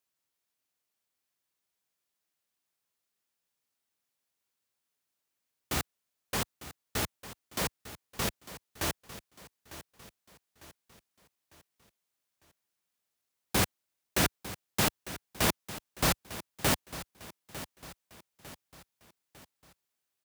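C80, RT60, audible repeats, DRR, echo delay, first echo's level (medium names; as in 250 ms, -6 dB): no reverb, no reverb, 4, no reverb, 901 ms, -14.5 dB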